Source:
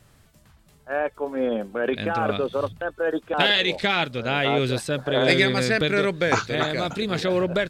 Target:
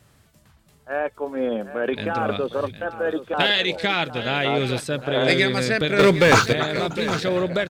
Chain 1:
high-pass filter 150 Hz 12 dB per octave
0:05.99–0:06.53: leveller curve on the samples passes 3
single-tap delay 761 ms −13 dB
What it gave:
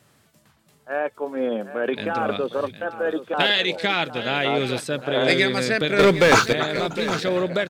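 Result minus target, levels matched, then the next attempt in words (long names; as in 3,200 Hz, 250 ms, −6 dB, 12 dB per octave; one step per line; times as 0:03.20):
125 Hz band −3.5 dB
high-pass filter 48 Hz 12 dB per octave
0:05.99–0:06.53: leveller curve on the samples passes 3
single-tap delay 761 ms −13 dB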